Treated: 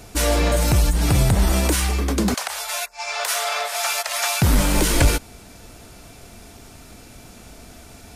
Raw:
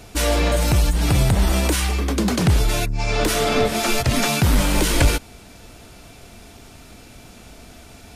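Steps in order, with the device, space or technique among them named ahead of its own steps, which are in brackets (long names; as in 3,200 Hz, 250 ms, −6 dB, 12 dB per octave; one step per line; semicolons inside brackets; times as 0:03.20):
exciter from parts (in parallel at −8 dB: high-pass filter 2,800 Hz 12 dB per octave + soft clipping −20.5 dBFS, distortion −17 dB + high-pass filter 2,500 Hz 12 dB per octave)
0:02.34–0:04.42: on the sum: inverse Chebyshev high-pass filter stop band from 340 Hz, stop band 40 dB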